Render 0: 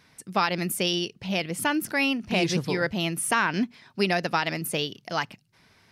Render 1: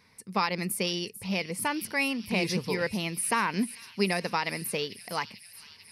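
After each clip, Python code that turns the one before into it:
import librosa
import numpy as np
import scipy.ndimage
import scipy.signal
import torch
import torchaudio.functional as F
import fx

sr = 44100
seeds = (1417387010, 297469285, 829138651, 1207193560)

y = fx.ripple_eq(x, sr, per_octave=0.89, db=7)
y = fx.echo_wet_highpass(y, sr, ms=444, feedback_pct=74, hz=3500.0, wet_db=-12.0)
y = y * librosa.db_to_amplitude(-4.0)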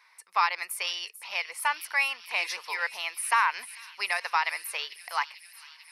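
y = scipy.signal.sosfilt(scipy.signal.butter(4, 940.0, 'highpass', fs=sr, output='sos'), x)
y = fx.high_shelf(y, sr, hz=2600.0, db=-11.0)
y = fx.notch(y, sr, hz=4800.0, q=21.0)
y = y * librosa.db_to_amplitude(8.0)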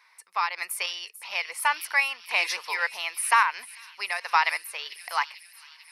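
y = fx.tremolo_random(x, sr, seeds[0], hz=3.5, depth_pct=55)
y = y * librosa.db_to_amplitude(4.5)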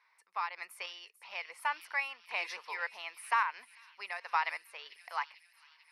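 y = fx.lowpass(x, sr, hz=2200.0, slope=6)
y = y * librosa.db_to_amplitude(-8.0)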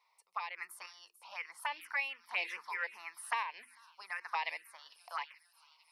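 y = fx.env_phaser(x, sr, low_hz=270.0, high_hz=1400.0, full_db=-31.0)
y = fx.hum_notches(y, sr, base_hz=50, count=7)
y = y * librosa.db_to_amplitude(2.0)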